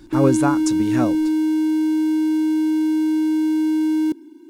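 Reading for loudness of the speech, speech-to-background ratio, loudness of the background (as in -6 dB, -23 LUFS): -23.0 LUFS, -3.5 dB, -19.5 LUFS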